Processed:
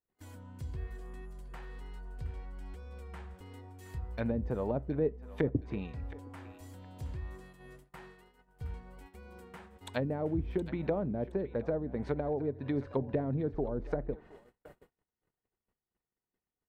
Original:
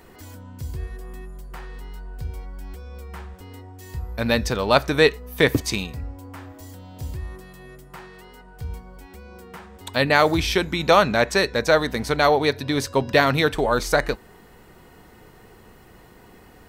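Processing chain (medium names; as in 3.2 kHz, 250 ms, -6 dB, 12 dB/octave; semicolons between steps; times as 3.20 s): low-pass that closes with the level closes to 380 Hz, closed at -17 dBFS; peaking EQ 5.3 kHz -5.5 dB 1 oct; vibrato 1.8 Hz 8 cents; dynamic bell 1.2 kHz, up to -5 dB, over -46 dBFS, Q 2.5; on a send: thinning echo 719 ms, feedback 26%, high-pass 1.1 kHz, level -12 dB; on the sum: gate -43 dBFS, range -40 dB; trim -8.5 dB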